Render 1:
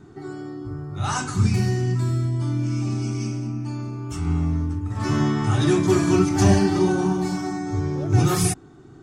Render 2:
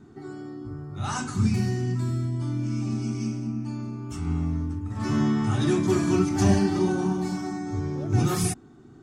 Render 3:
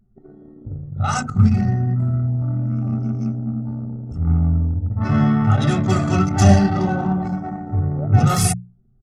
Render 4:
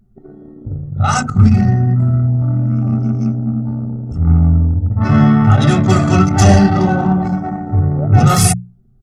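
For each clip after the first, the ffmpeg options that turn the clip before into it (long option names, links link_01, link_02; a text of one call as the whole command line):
ffmpeg -i in.wav -af "equalizer=frequency=230:width=5.4:gain=10,volume=-5dB" out.wav
ffmpeg -i in.wav -af "anlmdn=39.8,bandreject=frequency=60:width_type=h:width=6,bandreject=frequency=120:width_type=h:width=6,bandreject=frequency=180:width_type=h:width=6,aecho=1:1:1.5:0.83,volume=7dB" out.wav
ffmpeg -i in.wav -af "apsyclip=8.5dB,volume=-2dB" out.wav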